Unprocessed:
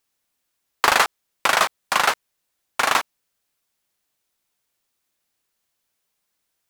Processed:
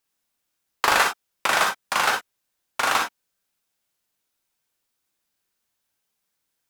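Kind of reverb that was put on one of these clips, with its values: non-linear reverb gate 80 ms rising, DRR 2 dB; gain -4 dB

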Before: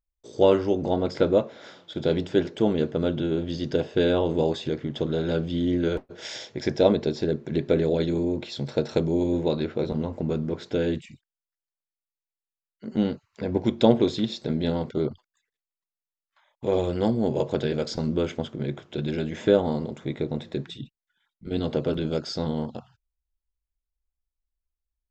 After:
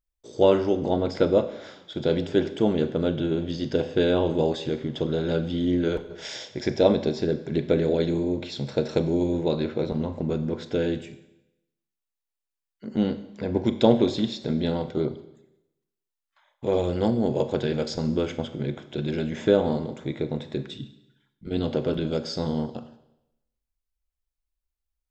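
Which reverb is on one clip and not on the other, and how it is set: Schroeder reverb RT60 0.88 s, combs from 30 ms, DRR 11.5 dB

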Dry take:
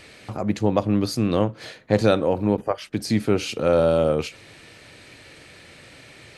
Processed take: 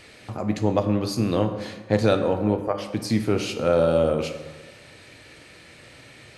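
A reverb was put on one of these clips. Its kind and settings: plate-style reverb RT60 1.3 s, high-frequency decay 0.55×, pre-delay 0 ms, DRR 6.5 dB; gain -2 dB

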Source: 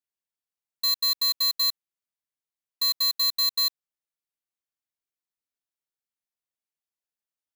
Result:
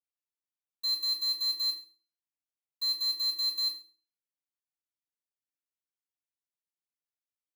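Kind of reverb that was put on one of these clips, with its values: FDN reverb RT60 0.39 s, low-frequency decay 1.25×, high-frequency decay 0.95×, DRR -5 dB; gain -16.5 dB

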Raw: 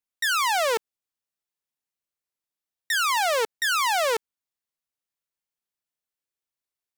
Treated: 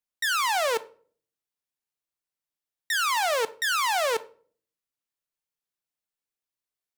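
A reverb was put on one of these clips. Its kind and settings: shoebox room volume 480 m³, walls furnished, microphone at 0.41 m; gain -2 dB

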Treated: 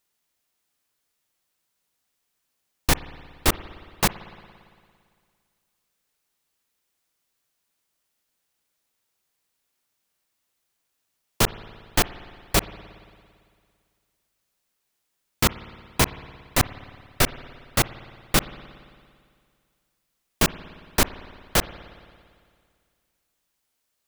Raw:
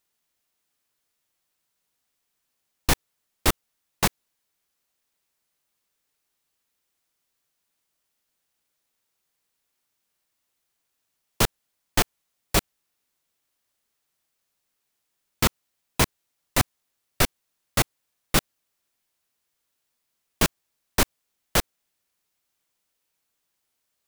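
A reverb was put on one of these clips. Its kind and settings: spring tank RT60 2.1 s, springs 56 ms, chirp 35 ms, DRR 15 dB; gain +1 dB

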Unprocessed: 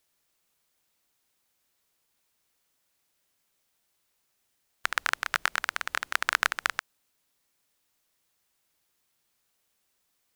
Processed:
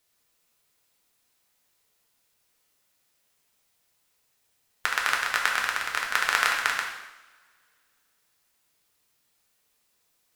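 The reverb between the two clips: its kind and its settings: two-slope reverb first 0.88 s, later 2.5 s, from -24 dB, DRR -1.5 dB

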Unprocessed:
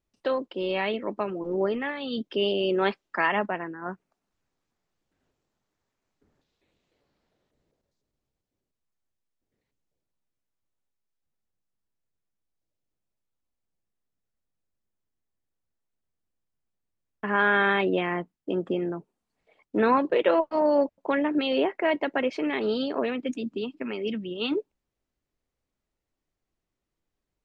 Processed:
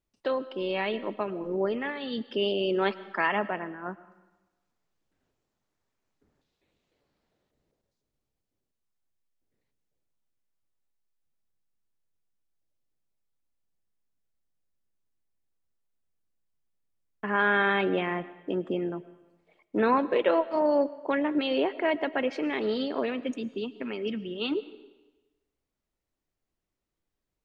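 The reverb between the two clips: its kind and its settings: digital reverb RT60 1.1 s, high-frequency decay 0.95×, pre-delay 70 ms, DRR 16.5 dB; gain -2 dB

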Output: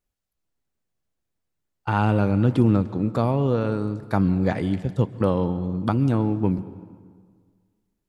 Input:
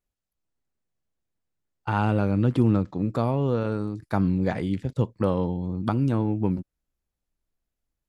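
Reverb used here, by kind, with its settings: plate-style reverb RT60 1.8 s, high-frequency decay 0.7×, pre-delay 0.115 s, DRR 15.5 dB; gain +2.5 dB

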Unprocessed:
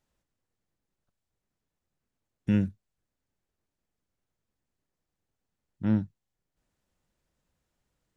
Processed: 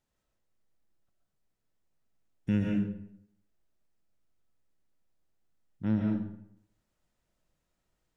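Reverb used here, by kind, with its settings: digital reverb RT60 0.73 s, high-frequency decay 0.7×, pre-delay 90 ms, DRR -0.5 dB; gain -3.5 dB

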